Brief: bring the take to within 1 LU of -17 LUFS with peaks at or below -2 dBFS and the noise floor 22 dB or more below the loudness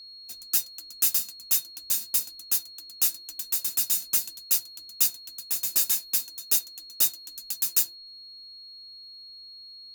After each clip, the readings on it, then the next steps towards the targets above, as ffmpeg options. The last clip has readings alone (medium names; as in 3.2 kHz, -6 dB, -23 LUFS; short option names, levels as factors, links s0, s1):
steady tone 4.3 kHz; tone level -43 dBFS; loudness -25.0 LUFS; peak level -7.0 dBFS; loudness target -17.0 LUFS
-> -af "bandreject=f=4300:w=30"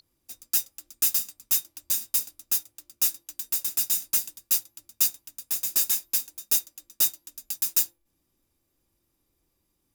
steady tone not found; loudness -25.0 LUFS; peak level -7.0 dBFS; loudness target -17.0 LUFS
-> -af "volume=2.51,alimiter=limit=0.794:level=0:latency=1"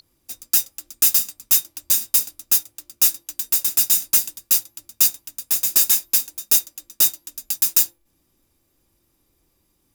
loudness -17.5 LUFS; peak level -2.0 dBFS; noise floor -68 dBFS